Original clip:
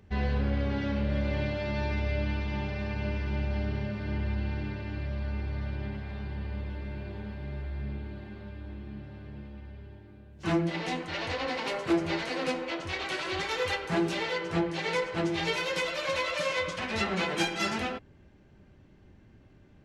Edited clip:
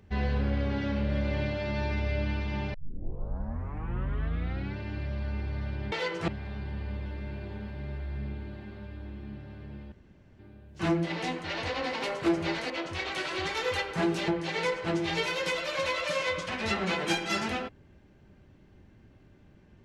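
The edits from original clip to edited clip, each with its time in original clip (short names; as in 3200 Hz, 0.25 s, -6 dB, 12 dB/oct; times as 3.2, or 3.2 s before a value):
2.74 tape start 2.03 s
9.56–10.03 room tone
12.34–12.64 cut
14.22–14.58 move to 5.92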